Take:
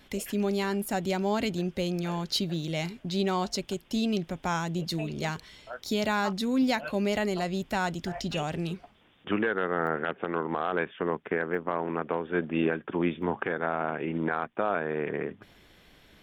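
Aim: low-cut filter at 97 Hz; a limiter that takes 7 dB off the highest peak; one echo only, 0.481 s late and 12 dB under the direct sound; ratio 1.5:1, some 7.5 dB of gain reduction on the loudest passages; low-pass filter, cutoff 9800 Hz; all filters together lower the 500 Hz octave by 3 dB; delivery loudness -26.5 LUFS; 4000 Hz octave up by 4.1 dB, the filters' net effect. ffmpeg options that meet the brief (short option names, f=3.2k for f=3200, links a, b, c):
-af "highpass=97,lowpass=9.8k,equalizer=f=500:t=o:g=-4,equalizer=f=4k:t=o:g=5,acompressor=threshold=-43dB:ratio=1.5,alimiter=level_in=3dB:limit=-24dB:level=0:latency=1,volume=-3dB,aecho=1:1:481:0.251,volume=12dB"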